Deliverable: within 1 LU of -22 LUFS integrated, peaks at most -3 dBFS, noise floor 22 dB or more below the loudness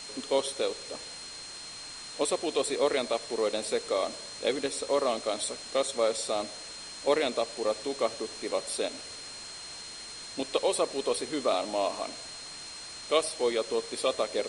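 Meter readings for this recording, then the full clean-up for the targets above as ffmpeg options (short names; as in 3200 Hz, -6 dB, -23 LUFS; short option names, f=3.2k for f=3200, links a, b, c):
steady tone 4200 Hz; tone level -43 dBFS; noise floor -43 dBFS; noise floor target -53 dBFS; loudness -31.0 LUFS; peak -11.0 dBFS; loudness target -22.0 LUFS
-> -af "bandreject=f=4.2k:w=30"
-af "afftdn=nr=10:nf=-43"
-af "volume=9dB,alimiter=limit=-3dB:level=0:latency=1"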